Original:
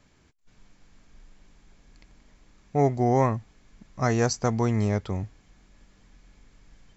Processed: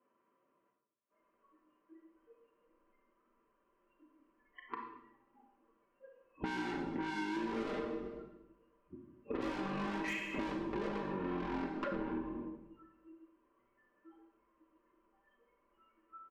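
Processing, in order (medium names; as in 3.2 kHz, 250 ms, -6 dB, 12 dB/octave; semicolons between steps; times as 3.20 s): vowel filter a; speed mistake 78 rpm record played at 33 rpm; spectral noise reduction 29 dB; in parallel at +2.5 dB: peak limiter -30 dBFS, peak gain reduction 9 dB; on the sum: distance through air 180 m; overdrive pedal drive 35 dB, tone 4 kHz, clips at -17.5 dBFS; peaking EQ 170 Hz -6.5 dB 0.23 oct; comb 5.1 ms, depth 85%; on a send at -2.5 dB: reverberation RT60 0.80 s, pre-delay 30 ms; on the sum: compression 6:1, threshold -34 dBFS, peak gain reduction 16.5 dB; trim -2 dB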